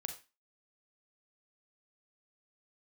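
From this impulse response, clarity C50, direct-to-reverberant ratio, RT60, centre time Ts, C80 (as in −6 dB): 10.0 dB, 5.0 dB, 0.25 s, 14 ms, 15.5 dB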